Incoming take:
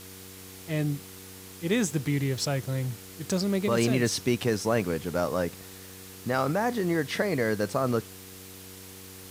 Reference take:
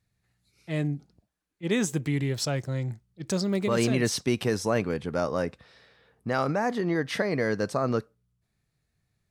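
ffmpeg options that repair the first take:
-af "bandreject=f=94.3:t=h:w=4,bandreject=f=188.6:t=h:w=4,bandreject=f=282.9:t=h:w=4,bandreject=f=377.2:t=h:w=4,bandreject=f=471.5:t=h:w=4,afwtdn=0.005"

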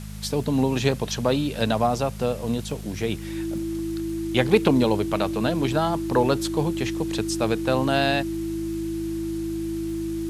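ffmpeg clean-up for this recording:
-af "adeclick=t=4,bandreject=f=52:t=h:w=4,bandreject=f=104:t=h:w=4,bandreject=f=156:t=h:w=4,bandreject=f=208:t=h:w=4,bandreject=f=330:w=30,afwtdn=0.005"

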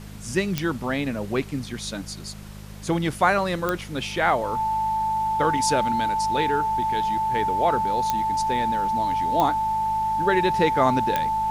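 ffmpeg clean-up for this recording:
-af "adeclick=t=4,bandreject=f=51.4:t=h:w=4,bandreject=f=102.8:t=h:w=4,bandreject=f=154.2:t=h:w=4,bandreject=f=205.6:t=h:w=4,bandreject=f=880:w=30,afftdn=nr=30:nf=-37"

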